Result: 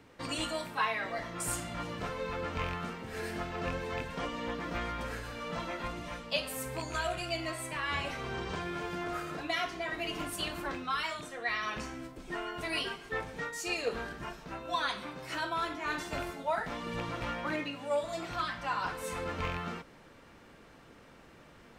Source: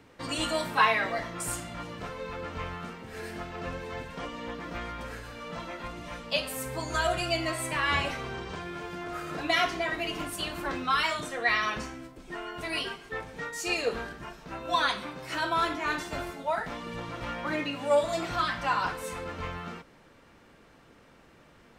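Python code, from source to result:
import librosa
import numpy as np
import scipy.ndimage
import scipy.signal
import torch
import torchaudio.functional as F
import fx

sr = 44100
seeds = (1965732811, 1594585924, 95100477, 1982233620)

y = fx.rattle_buzz(x, sr, strikes_db=-34.0, level_db=-28.0)
y = fx.rider(y, sr, range_db=5, speed_s=0.5)
y = y * 10.0 ** (-4.0 / 20.0)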